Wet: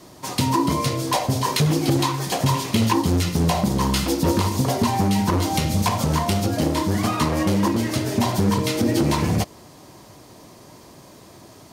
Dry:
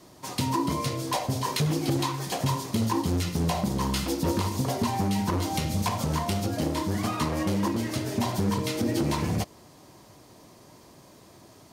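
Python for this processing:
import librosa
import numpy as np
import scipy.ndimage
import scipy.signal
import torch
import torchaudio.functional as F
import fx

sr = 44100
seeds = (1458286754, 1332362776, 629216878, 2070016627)

y = fx.peak_eq(x, sr, hz=2600.0, db=8.0, octaves=1.1, at=(2.54, 2.94))
y = y * librosa.db_to_amplitude(6.5)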